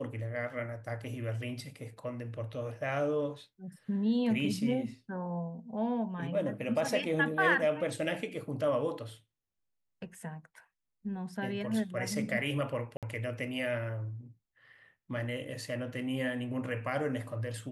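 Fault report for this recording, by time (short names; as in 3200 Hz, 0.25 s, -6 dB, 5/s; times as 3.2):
12.97–13.03 gap 57 ms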